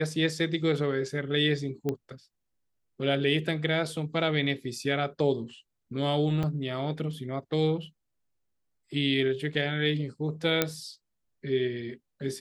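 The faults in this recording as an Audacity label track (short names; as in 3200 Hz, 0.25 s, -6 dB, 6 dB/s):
1.890000	1.890000	pop -17 dBFS
6.430000	6.440000	gap 5.5 ms
10.620000	10.620000	pop -7 dBFS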